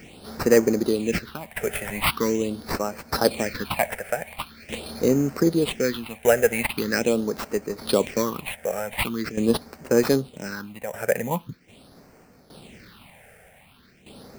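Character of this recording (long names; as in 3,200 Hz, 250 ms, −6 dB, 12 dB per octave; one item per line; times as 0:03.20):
aliases and images of a low sample rate 6,700 Hz, jitter 0%
phaser sweep stages 6, 0.43 Hz, lowest notch 280–3,500 Hz
tremolo saw down 0.64 Hz, depth 75%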